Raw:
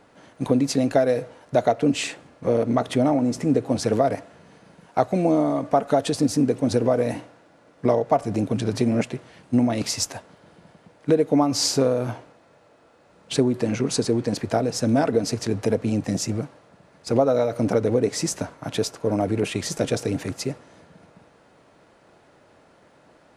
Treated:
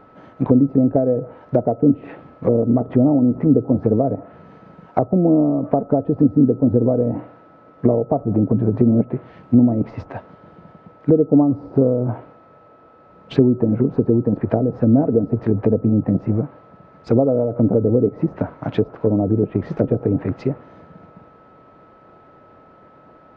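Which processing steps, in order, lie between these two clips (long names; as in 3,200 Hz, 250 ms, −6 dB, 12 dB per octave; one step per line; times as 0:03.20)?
treble cut that deepens with the level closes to 470 Hz, closed at −19 dBFS
steady tone 1,300 Hz −53 dBFS
head-to-tape spacing loss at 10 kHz 38 dB
level +8 dB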